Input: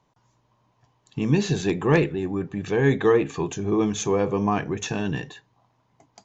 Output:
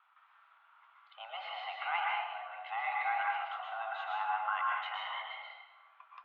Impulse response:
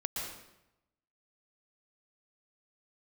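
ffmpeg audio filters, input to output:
-filter_complex "[1:a]atrim=start_sample=2205[a];[0:a][a]afir=irnorm=-1:irlink=0,acompressor=threshold=-53dB:ratio=1.5,highpass=f=510:t=q:w=0.5412,highpass=f=510:t=q:w=1.307,lowpass=f=2.9k:t=q:w=0.5176,lowpass=f=2.9k:t=q:w=0.7071,lowpass=f=2.9k:t=q:w=1.932,afreqshift=350,volume=3.5dB"

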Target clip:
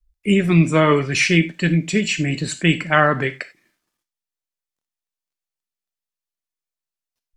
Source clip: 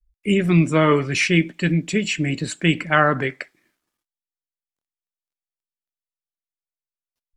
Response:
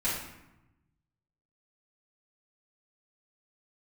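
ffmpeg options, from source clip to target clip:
-filter_complex "[0:a]asplit=2[a][b];[b]equalizer=f=5.6k:w=0.48:g=13[c];[1:a]atrim=start_sample=2205,atrim=end_sample=4410[d];[c][d]afir=irnorm=-1:irlink=0,volume=-22dB[e];[a][e]amix=inputs=2:normalize=0,volume=1dB"

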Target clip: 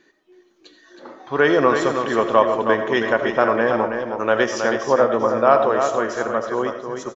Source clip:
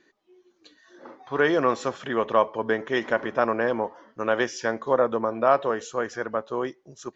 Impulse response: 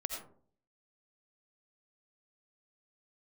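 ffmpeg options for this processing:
-filter_complex "[0:a]aecho=1:1:320|719:0.473|0.141,asplit=2[a][b];[1:a]atrim=start_sample=2205[c];[b][c]afir=irnorm=-1:irlink=0,volume=-1.5dB[d];[a][d]amix=inputs=2:normalize=0"

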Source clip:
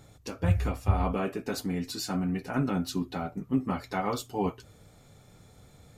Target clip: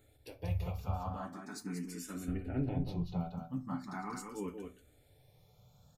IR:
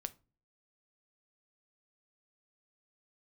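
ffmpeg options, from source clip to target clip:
-filter_complex "[0:a]highshelf=f=12k:g=9.5,asettb=1/sr,asplit=3[a][b][c];[a]atrim=end=0.974[d];[b]atrim=start=0.97:end=1.62,asetpts=PTS-STARTPTS,afade=t=in:d=0.004:c=qsin,afade=t=out:st=0.646:d=0.004:c=qsin,highpass=f=260:p=1[e];[c]atrim=start=1.616[f];[d][e]acrossfade=d=0.004:c1=hsin:c2=qsin[g];[g][f]acrossfade=d=0.004:c1=qsin:c2=hsin,asettb=1/sr,asplit=3[h][i][j];[h]atrim=end=2.284[k];[i]atrim=start=2.28:end=3.2,asetpts=PTS-STARTPTS,afade=t=in:d=0.004:c=qsin,afade=t=out:st=0.916:d=0.004:c=qsin,aemphasis=mode=reproduction:type=riaa[l];[j]atrim=start=3.196[m];[k][l]acrossfade=d=0.004:c1=hsin:c2=qsin[n];[n][m]acrossfade=d=0.004:c1=qsin:c2=hsin,aecho=1:1:186:0.531[o];[1:a]atrim=start_sample=2205[p];[o][p]afir=irnorm=-1:irlink=0,asplit=2[q][r];[r]afreqshift=0.41[s];[q][s]amix=inputs=2:normalize=1,volume=-6.5dB"

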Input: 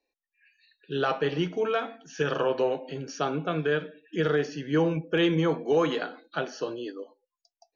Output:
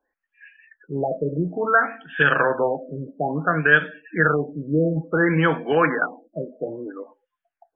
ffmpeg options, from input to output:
-af "equalizer=f=400:t=o:w=0.67:g=-6,equalizer=f=1.6k:t=o:w=0.67:g=12,equalizer=f=4k:t=o:w=0.67:g=3,afftfilt=real='re*lt(b*sr/1024,630*pow(3700/630,0.5+0.5*sin(2*PI*0.58*pts/sr)))':imag='im*lt(b*sr/1024,630*pow(3700/630,0.5+0.5*sin(2*PI*0.58*pts/sr)))':win_size=1024:overlap=0.75,volume=6.5dB"

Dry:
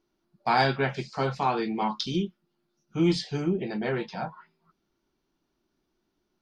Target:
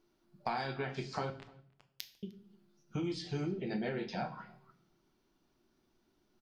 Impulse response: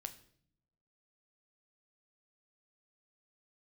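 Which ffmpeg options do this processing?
-filter_complex "[0:a]asettb=1/sr,asplit=3[a][b][c];[a]atrim=end=3.454[d];[b]atrim=start=3.45:end=4.23,asetpts=PTS-STARTPTS,afade=t=in:d=0.004:c=qsin,afade=t=out:st=0.776:d=0.004:c=qsin,equalizer=f=1.1k:t=o:w=0.45:g=-11.5[e];[c]atrim=start=4.226[f];[d][e]acrossfade=d=0.004:c1=hsin:c2=qsin[g];[g][f]acrossfade=d=0.004:c1=qsin:c2=hsin,acompressor=threshold=-35dB:ratio=12,asettb=1/sr,asplit=3[h][i][j];[h]atrim=end=1.304[k];[i]atrim=start=1.3:end=2.23,asetpts=PTS-STARTPTS,afade=t=in:d=0.004:c=qsin,afade=t=out:st=0.926:d=0.004:c=qsin,acrusher=bits=3:mix=0:aa=0.5[l];[j]atrim=start=2.226[m];[k][l]acrossfade=d=0.004:c1=hsin:c2=qsin[n];[n][m]acrossfade=d=0.004:c1=qsin:c2=hsin,asplit=2[o][p];[p]adelay=303.2,volume=-25dB,highshelf=f=4k:g=-6.82[q];[o][q]amix=inputs=2:normalize=0[r];[1:a]atrim=start_sample=2205[s];[r][s]afir=irnorm=-1:irlink=0,volume=5.5dB"

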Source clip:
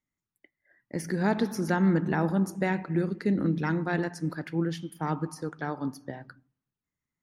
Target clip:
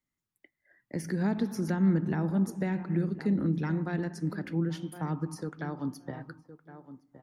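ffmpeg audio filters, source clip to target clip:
-filter_complex "[0:a]asplit=2[a][b];[b]adelay=1064,lowpass=f=1k:p=1,volume=-15.5dB,asplit=2[c][d];[d]adelay=1064,lowpass=f=1k:p=1,volume=0.18[e];[a][c][e]amix=inputs=3:normalize=0,acrossover=split=290[f][g];[g]acompressor=threshold=-39dB:ratio=2.5[h];[f][h]amix=inputs=2:normalize=0"

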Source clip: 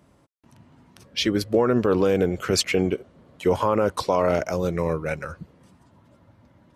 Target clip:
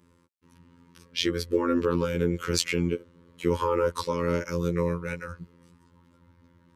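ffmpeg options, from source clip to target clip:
-af "afftfilt=real='hypot(re,im)*cos(PI*b)':imag='0':win_size=2048:overlap=0.75,asuperstop=centerf=710:order=12:qfactor=2.4"

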